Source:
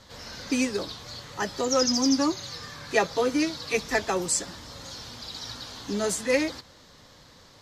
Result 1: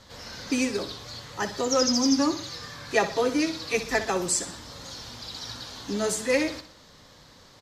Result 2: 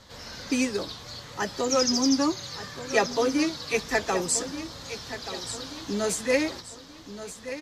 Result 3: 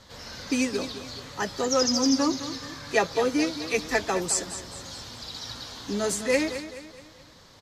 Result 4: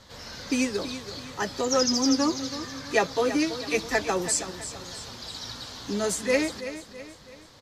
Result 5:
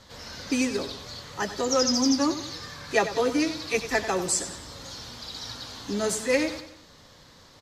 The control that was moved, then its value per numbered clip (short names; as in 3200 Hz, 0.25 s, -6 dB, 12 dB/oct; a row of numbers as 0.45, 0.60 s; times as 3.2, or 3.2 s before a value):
feedback echo, time: 62, 1179, 213, 328, 94 ms